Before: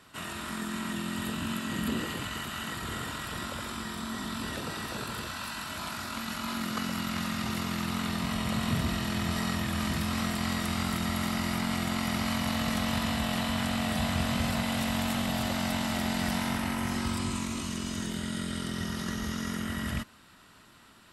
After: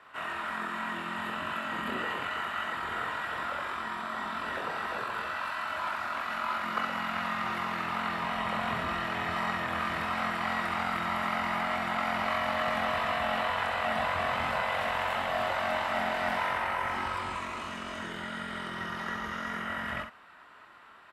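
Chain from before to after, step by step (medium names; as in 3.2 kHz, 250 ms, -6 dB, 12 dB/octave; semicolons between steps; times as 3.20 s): three-band isolator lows -19 dB, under 500 Hz, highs -22 dB, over 2.4 kHz; on a send: early reflections 24 ms -6.5 dB, 64 ms -6.5 dB; on the sum: trim +5.5 dB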